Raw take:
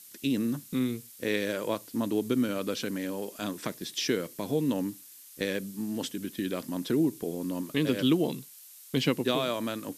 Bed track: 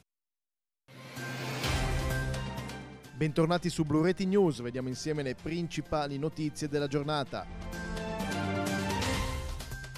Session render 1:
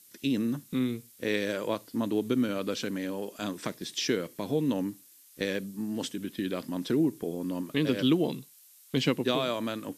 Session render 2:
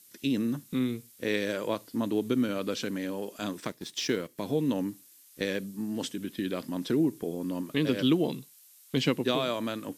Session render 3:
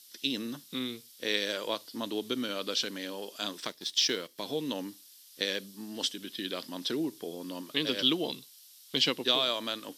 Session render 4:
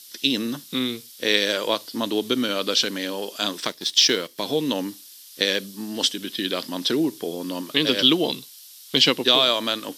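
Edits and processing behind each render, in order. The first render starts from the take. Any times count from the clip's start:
noise print and reduce 6 dB
3.6–4.38 G.711 law mismatch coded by A
HPF 600 Hz 6 dB/oct; band shelf 4100 Hz +8.5 dB 1.1 oct
gain +10 dB; limiter -3 dBFS, peak gain reduction 2 dB

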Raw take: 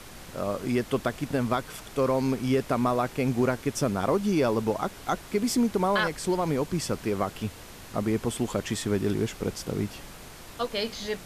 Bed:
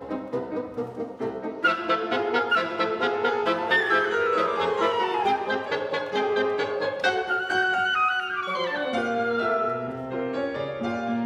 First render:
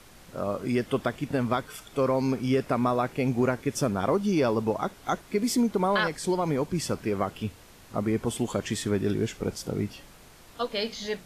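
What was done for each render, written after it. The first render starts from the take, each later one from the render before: noise print and reduce 7 dB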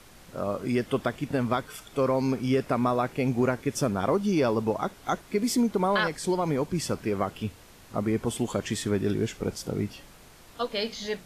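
nothing audible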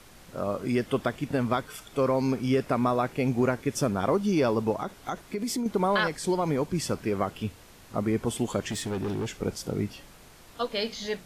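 4.74–5.66 compressor 4:1, threshold -27 dBFS; 8.7–9.3 overloaded stage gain 27.5 dB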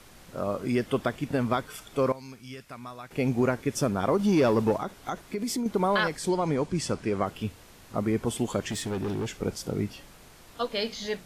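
2.12–3.11 passive tone stack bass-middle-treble 5-5-5; 4.19–4.78 sample leveller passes 1; 6.29–7.26 LPF 10000 Hz 24 dB/oct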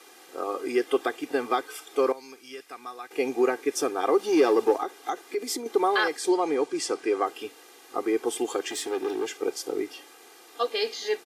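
HPF 280 Hz 24 dB/oct; comb 2.5 ms, depth 88%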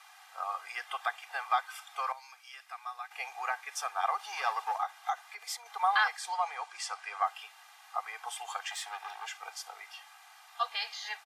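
steep high-pass 740 Hz 48 dB/oct; high shelf 3800 Hz -9.5 dB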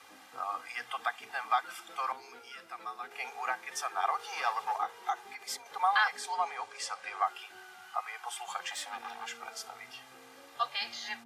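add bed -30 dB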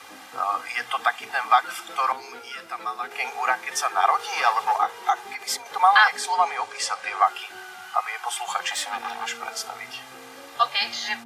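gain +11 dB

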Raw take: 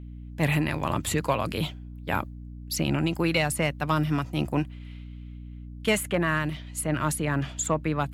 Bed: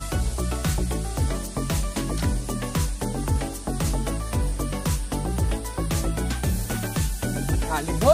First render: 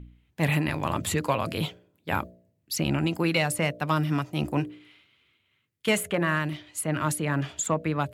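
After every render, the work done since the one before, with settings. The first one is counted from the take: de-hum 60 Hz, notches 11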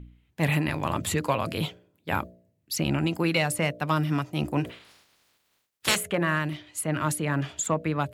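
4.64–5.95 spectral limiter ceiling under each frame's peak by 30 dB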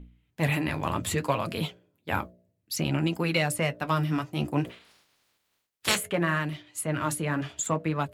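in parallel at -8 dB: crossover distortion -45 dBFS; on the sum: flange 0.62 Hz, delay 4.1 ms, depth 7.8 ms, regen -49%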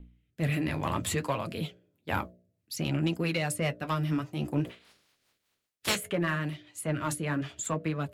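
rotary speaker horn 0.75 Hz, later 5 Hz, at 2.02; soft clip -18 dBFS, distortion -19 dB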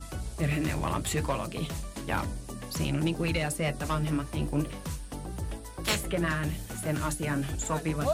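add bed -11.5 dB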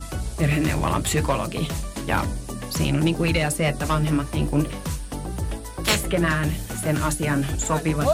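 gain +7.5 dB

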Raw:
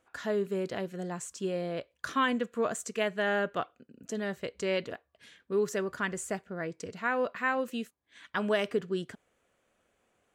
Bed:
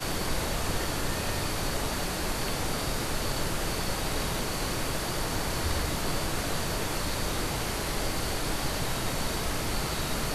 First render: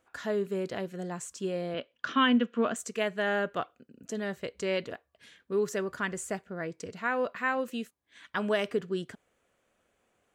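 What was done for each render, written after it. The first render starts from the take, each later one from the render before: 1.74–2.76 speaker cabinet 150–5400 Hz, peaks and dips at 240 Hz +9 dB, 1400 Hz +4 dB, 3000 Hz +9 dB, 4400 Hz -4 dB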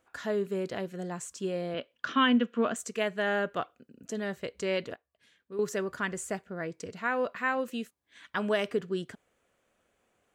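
4.94–5.59 gain -9.5 dB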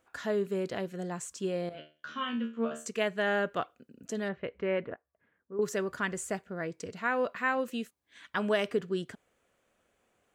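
1.69–2.86 resonator 76 Hz, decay 0.32 s, mix 100%; 4.28–5.61 LPF 3000 Hz -> 1300 Hz 24 dB/oct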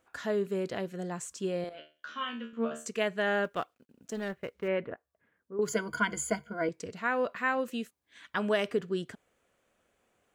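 1.64–2.53 bell 140 Hz -12.5 dB 1.9 oct; 3.44–4.68 G.711 law mismatch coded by A; 5.67–6.69 ripple EQ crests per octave 1.8, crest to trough 18 dB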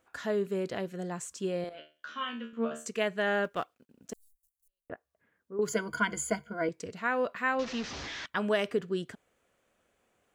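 4.13–4.9 inverse Chebyshev band-stop 120–2300 Hz, stop band 70 dB; 7.59–8.26 delta modulation 32 kbps, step -33.5 dBFS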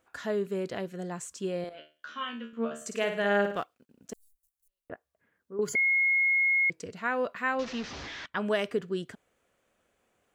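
2.76–3.58 flutter echo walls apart 9.3 m, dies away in 0.5 s; 5.75–6.7 bleep 2160 Hz -21.5 dBFS; 7.69–8.45 high shelf 10000 Hz -> 5300 Hz -9 dB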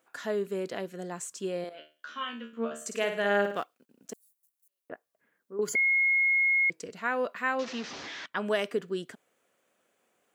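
HPF 200 Hz 12 dB/oct; high shelf 8400 Hz +5.5 dB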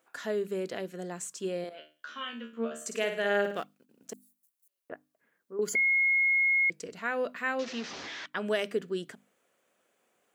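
notches 50/100/150/200/250/300 Hz; dynamic EQ 1000 Hz, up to -6 dB, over -45 dBFS, Q 1.8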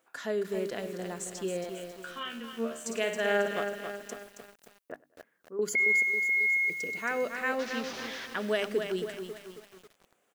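feedback echo 0.1 s, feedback 49%, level -23 dB; lo-fi delay 0.272 s, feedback 55%, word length 8-bit, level -6.5 dB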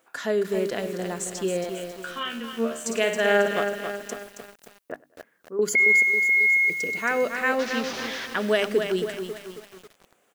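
gain +7 dB

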